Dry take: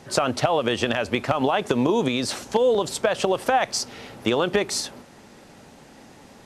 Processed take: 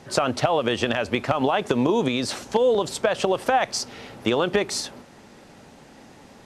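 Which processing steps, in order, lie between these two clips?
high shelf 8800 Hz -5 dB

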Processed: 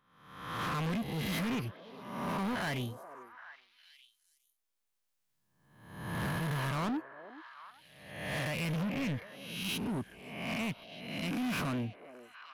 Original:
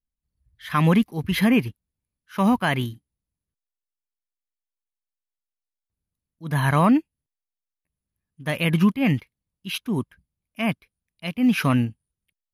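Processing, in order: spectral swells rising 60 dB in 0.89 s; recorder AGC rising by 6.4 dB/s; soft clip -23.5 dBFS, distortion -7 dB; delay with a stepping band-pass 0.41 s, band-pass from 510 Hz, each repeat 1.4 oct, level -8.5 dB; gain -8 dB

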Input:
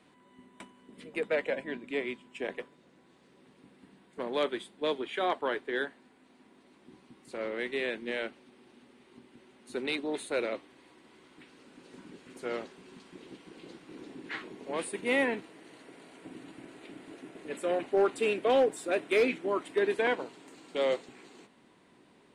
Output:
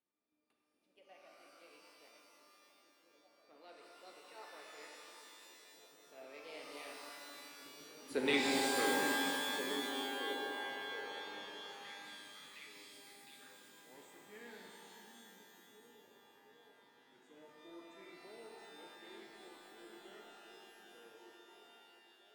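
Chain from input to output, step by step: Doppler pass-by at 8.24, 57 m/s, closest 13 m; delay with a stepping band-pass 0.713 s, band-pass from 210 Hz, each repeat 0.7 oct, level -4 dB; shimmer reverb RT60 2.6 s, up +12 st, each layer -2 dB, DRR -1 dB; gain -1.5 dB

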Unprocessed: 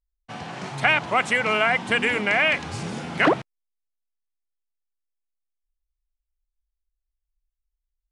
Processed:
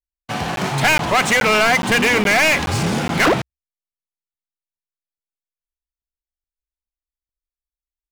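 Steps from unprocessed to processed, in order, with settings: bell 64 Hz +14.5 dB 0.3 oct; sample leveller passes 5; crackling interface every 0.42 s, samples 512, zero, from 0.56; gain -6 dB

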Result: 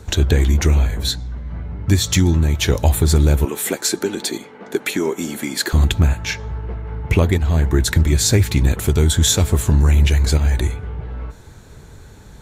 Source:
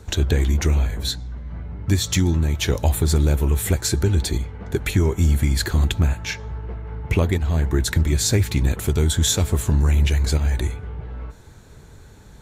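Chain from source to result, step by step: 3.45–5.73 HPF 230 Hz 24 dB/oct; gain +4 dB

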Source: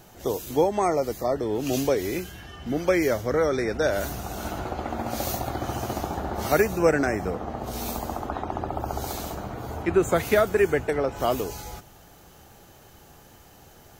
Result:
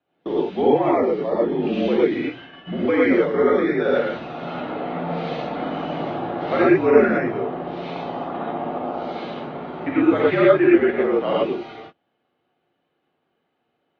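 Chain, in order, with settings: non-linear reverb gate 0.14 s rising, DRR -6 dB; mistuned SSB -60 Hz 210–3600 Hz; gate -37 dBFS, range -23 dB; gain -2 dB

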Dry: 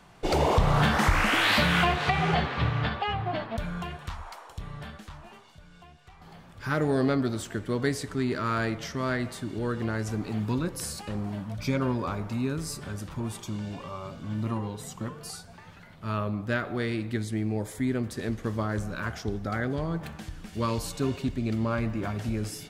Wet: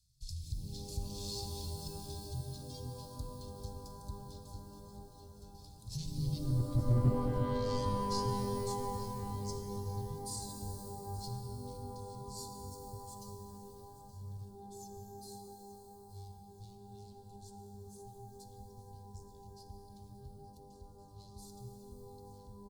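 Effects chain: minimum comb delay 1.3 ms; Doppler pass-by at 6.91, 37 m/s, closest 9.8 m; Chebyshev band-stop 130–4300 Hz, order 4; treble ducked by the level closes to 520 Hz, closed at -36.5 dBFS; in parallel at +1 dB: compressor, threshold -58 dBFS, peak gain reduction 23.5 dB; on the sum: one-sided clip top -37.5 dBFS, bottom -30 dBFS; reverb removal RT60 1.9 s; on a send: feedback echo 0.875 s, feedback 43%, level -16 dB; on the sum: shimmer reverb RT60 3.3 s, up +12 st, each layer -2 dB, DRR 4 dB; gain +12 dB

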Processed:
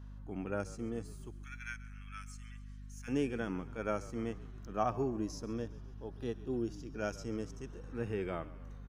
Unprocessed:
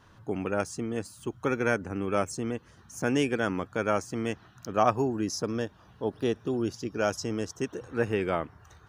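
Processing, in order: 1.32–3.08 inverse Chebyshev high-pass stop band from 480 Hz, stop band 60 dB; hum 50 Hz, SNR 10 dB; harmonic-percussive split percussive -12 dB; on a send: frequency-shifting echo 0.136 s, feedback 61%, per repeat -43 Hz, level -18 dB; on the sum: gain -5.5 dB

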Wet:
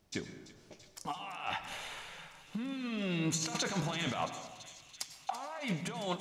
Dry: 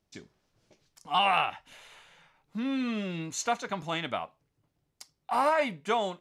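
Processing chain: dynamic EQ 4300 Hz, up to +4 dB, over -45 dBFS, Q 0.76; negative-ratio compressor -38 dBFS, ratio -1; thin delay 0.335 s, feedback 81%, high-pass 3000 Hz, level -13 dB; plate-style reverb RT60 1.2 s, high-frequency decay 0.45×, pre-delay 85 ms, DRR 9.5 dB

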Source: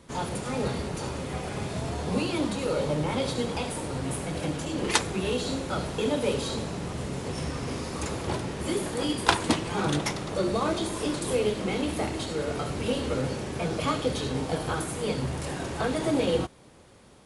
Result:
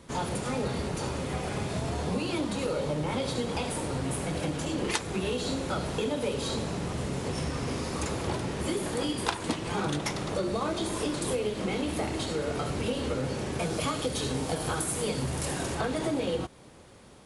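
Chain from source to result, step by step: 13.59–15.75 high shelf 7100 Hz +11.5 dB; compressor 5:1, threshold -28 dBFS, peak gain reduction 12 dB; gain +1.5 dB

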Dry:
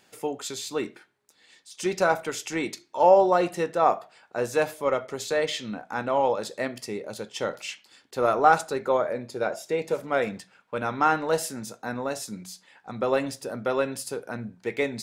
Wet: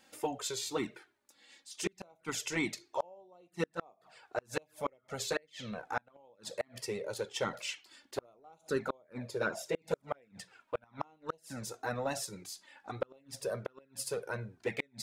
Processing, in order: envelope flanger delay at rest 3.8 ms, full sweep at -18.5 dBFS; flipped gate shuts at -20 dBFS, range -36 dB

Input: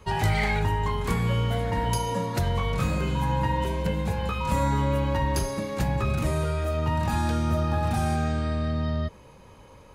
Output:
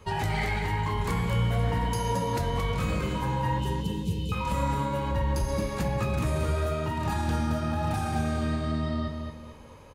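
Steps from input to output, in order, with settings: 3.58–4.32 Chebyshev band-stop 440–2800 Hz, order 4; 5.11–5.62 low shelf 130 Hz +10 dB; limiter -19.5 dBFS, peak gain reduction 9 dB; flange 1 Hz, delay 8.4 ms, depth 8.7 ms, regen -59%; on a send: feedback echo 0.222 s, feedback 36%, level -6 dB; on the sum: gain +3.5 dB

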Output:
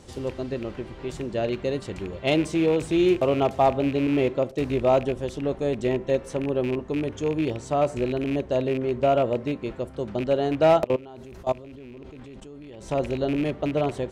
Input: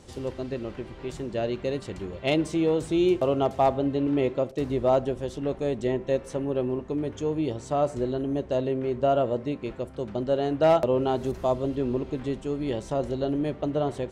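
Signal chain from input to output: rattling part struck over -32 dBFS, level -28 dBFS; 10.84–12.88 level quantiser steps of 22 dB; gain +2 dB

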